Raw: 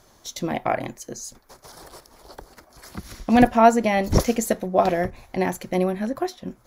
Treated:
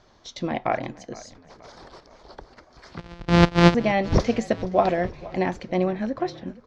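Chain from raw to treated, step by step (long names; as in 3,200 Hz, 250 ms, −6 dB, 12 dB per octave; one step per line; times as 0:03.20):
0:02.98–0:03.75: samples sorted by size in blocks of 256 samples
low-pass filter 5,000 Hz 24 dB per octave
echo with shifted repeats 470 ms, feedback 52%, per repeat −32 Hz, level −19.5 dB
level −1 dB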